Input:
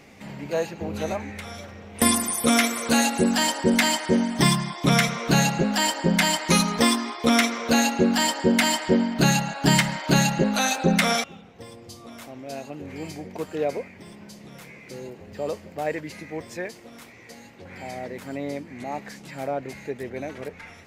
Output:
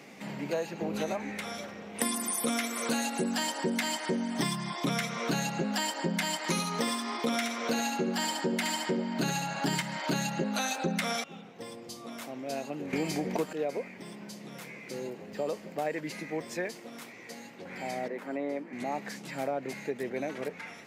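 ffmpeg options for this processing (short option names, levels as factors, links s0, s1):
-filter_complex "[0:a]asettb=1/sr,asplit=3[s0][s1][s2];[s0]atrim=end=6.374[s3];[s1]atrim=start=6.37:end=9.82,asetpts=PTS-STARTPTS,afade=t=in:d=0.004:c=qsin,afade=t=out:st=3.446:d=0.004:c=qsin,aecho=1:1:70:0.531,atrim=end_sample=152145[s4];[s2]atrim=start=9.816[s5];[s3][s4]acrossfade=d=0.004:c1=hsin:c2=qsin[s6];[s6][s5]acrossfade=d=0.004:c1=qsin:c2=hsin,asettb=1/sr,asplit=3[s7][s8][s9];[s7]atrim=end=18.084[s10];[s8]atrim=start=18.08:end=18.73,asetpts=PTS-STARTPTS,afade=t=in:d=0.004:c=qsin,afade=t=out:st=0.646:d=0.004:c=qsin,acrossover=split=220 2400:gain=0.126 1 0.224[s11][s12][s13];[s11][s12][s13]amix=inputs=3:normalize=0[s14];[s9]atrim=start=18.726[s15];[s10][s14]acrossfade=d=0.004:c1=hsin:c2=qsin[s16];[s16][s15]acrossfade=d=0.004:c1=qsin:c2=hsin,asplit=3[s17][s18][s19];[s17]atrim=end=12.932[s20];[s18]atrim=start=12.928:end=13.532,asetpts=PTS-STARTPTS,volume=3.98[s21];[s19]atrim=start=13.528[s22];[s20][s21]acrossfade=d=0.004:c1=hsin:c2=hsin[s23];[s23][s22]acrossfade=d=0.004:c1=hsin:c2=hsin,highpass=f=150:w=0.5412,highpass=f=150:w=1.3066,acompressor=threshold=0.0398:ratio=6"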